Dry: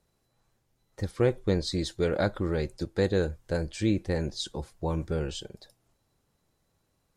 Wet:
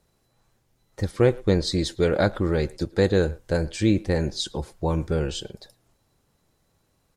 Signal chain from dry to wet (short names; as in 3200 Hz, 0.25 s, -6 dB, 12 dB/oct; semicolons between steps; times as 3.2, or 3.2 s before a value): speakerphone echo 0.11 s, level -21 dB; gain +5.5 dB